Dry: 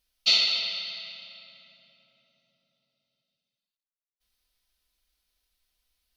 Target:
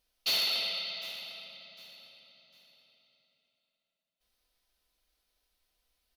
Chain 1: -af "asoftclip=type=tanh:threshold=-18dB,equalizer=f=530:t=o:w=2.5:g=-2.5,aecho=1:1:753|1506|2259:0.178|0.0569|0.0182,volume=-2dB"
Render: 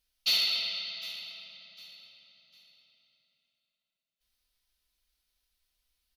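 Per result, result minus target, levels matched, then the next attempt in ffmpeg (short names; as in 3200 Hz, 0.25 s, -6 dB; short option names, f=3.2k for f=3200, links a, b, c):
500 Hz band -9.5 dB; soft clip: distortion -5 dB
-af "asoftclip=type=tanh:threshold=-18dB,equalizer=f=530:t=o:w=2.5:g=7.5,aecho=1:1:753|1506|2259:0.178|0.0569|0.0182,volume=-2dB"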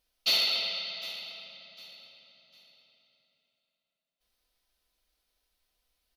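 soft clip: distortion -5 dB
-af "asoftclip=type=tanh:threshold=-24dB,equalizer=f=530:t=o:w=2.5:g=7.5,aecho=1:1:753|1506|2259:0.178|0.0569|0.0182,volume=-2dB"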